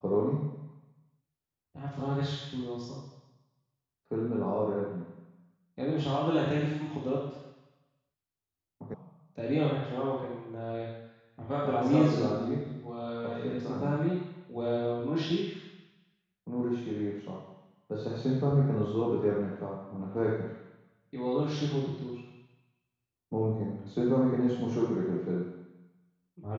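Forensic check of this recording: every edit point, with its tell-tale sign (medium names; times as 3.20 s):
8.94 s: sound stops dead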